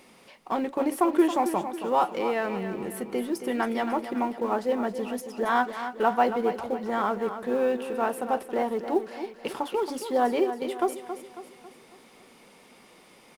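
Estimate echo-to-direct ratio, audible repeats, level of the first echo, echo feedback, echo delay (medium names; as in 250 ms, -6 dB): -9.0 dB, 4, -10.0 dB, 45%, 274 ms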